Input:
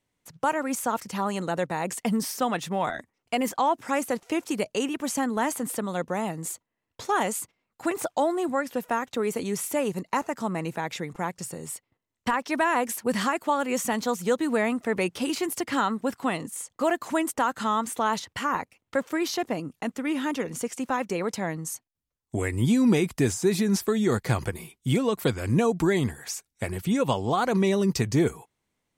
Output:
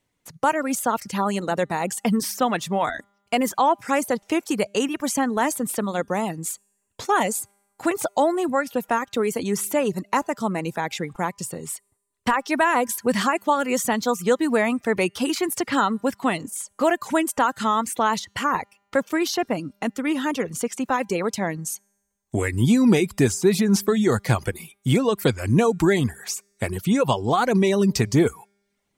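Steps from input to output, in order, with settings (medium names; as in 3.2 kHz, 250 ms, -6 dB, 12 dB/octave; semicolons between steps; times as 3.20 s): feedback comb 200 Hz, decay 1.3 s, mix 40%; reverb removal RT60 0.54 s; trim +9 dB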